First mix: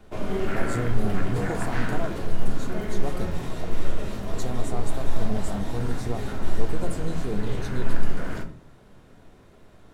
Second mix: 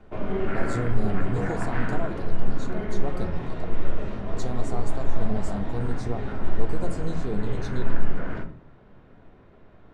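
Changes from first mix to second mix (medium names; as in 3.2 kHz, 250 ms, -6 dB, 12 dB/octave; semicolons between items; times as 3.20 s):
speech: add low-pass 6.8 kHz; background: add low-pass 2.4 kHz 12 dB/octave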